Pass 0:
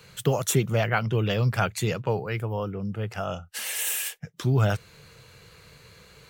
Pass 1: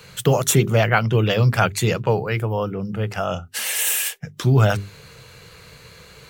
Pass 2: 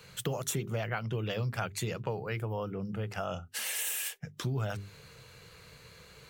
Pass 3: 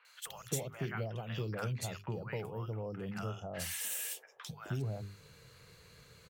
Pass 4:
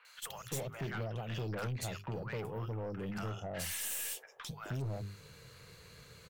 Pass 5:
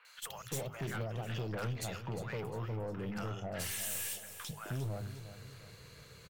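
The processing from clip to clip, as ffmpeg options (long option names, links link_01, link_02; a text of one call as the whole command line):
ffmpeg -i in.wav -af "bandreject=frequency=50:width_type=h:width=6,bandreject=frequency=100:width_type=h:width=6,bandreject=frequency=150:width_type=h:width=6,bandreject=frequency=200:width_type=h:width=6,bandreject=frequency=250:width_type=h:width=6,bandreject=frequency=300:width_type=h:width=6,bandreject=frequency=350:width_type=h:width=6,bandreject=frequency=400:width_type=h:width=6,volume=7dB" out.wav
ffmpeg -i in.wav -af "acompressor=threshold=-22dB:ratio=4,volume=-9dB" out.wav
ffmpeg -i in.wav -filter_complex "[0:a]acrossover=split=820|2600[link_01][link_02][link_03];[link_03]adelay=50[link_04];[link_01]adelay=260[link_05];[link_05][link_02][link_04]amix=inputs=3:normalize=0,volume=-4dB" out.wav
ffmpeg -i in.wav -af "aeval=exprs='(tanh(70.8*val(0)+0.25)-tanh(0.25))/70.8':channel_layout=same,volume=3.5dB" out.wav
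ffmpeg -i in.wav -af "aecho=1:1:354|708|1062|1416:0.251|0.105|0.0443|0.0186" out.wav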